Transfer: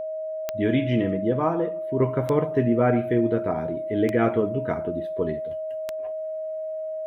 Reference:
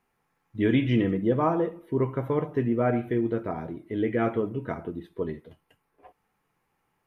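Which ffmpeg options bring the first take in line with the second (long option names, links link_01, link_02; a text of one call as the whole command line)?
ffmpeg -i in.wav -af "adeclick=threshold=4,bandreject=frequency=630:width=30,asetnsamples=nb_out_samples=441:pad=0,asendcmd='2 volume volume -4dB',volume=0dB" out.wav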